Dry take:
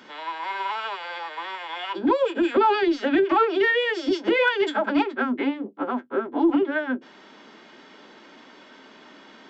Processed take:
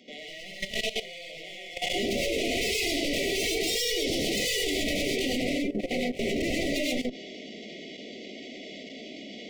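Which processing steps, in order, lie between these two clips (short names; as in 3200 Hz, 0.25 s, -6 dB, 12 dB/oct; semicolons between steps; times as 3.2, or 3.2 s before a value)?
added harmonics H 7 -7 dB, 8 -13 dB, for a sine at -9 dBFS; hard clip -25.5 dBFS, distortion -3 dB; brick-wall FIR band-stop 750–1900 Hz; non-linear reverb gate 0.15 s rising, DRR -2.5 dB; level quantiser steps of 14 dB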